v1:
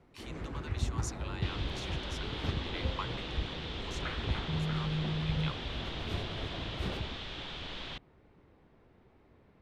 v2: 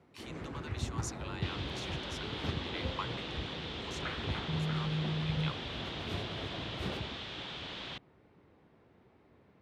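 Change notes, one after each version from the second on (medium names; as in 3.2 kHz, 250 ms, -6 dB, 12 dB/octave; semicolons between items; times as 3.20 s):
master: add high-pass 89 Hz 12 dB/octave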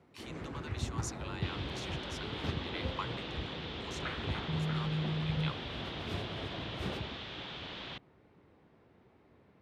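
second sound: add distance through air 75 m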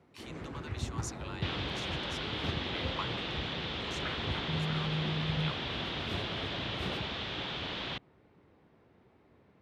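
second sound +6.0 dB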